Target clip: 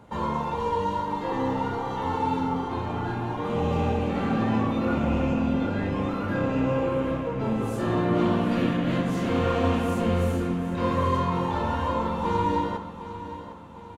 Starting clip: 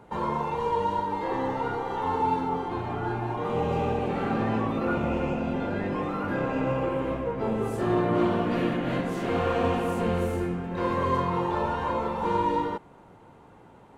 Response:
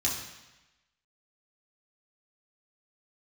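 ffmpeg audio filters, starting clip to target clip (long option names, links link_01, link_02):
-filter_complex "[0:a]aecho=1:1:756|1512|2268|3024|3780:0.224|0.105|0.0495|0.0232|0.0109,asplit=2[link_01][link_02];[1:a]atrim=start_sample=2205[link_03];[link_02][link_03]afir=irnorm=-1:irlink=0,volume=-13dB[link_04];[link_01][link_04]amix=inputs=2:normalize=0"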